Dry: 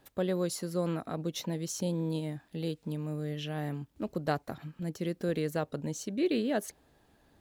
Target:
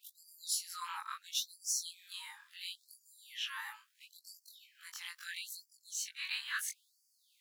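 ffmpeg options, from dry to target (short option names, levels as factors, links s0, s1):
-af "afftfilt=real='re':imag='-im':win_size=2048:overlap=0.75,afftfilt=real='re*gte(b*sr/1024,810*pow(4600/810,0.5+0.5*sin(2*PI*0.74*pts/sr)))':imag='im*gte(b*sr/1024,810*pow(4600/810,0.5+0.5*sin(2*PI*0.74*pts/sr)))':win_size=1024:overlap=0.75,volume=2.66"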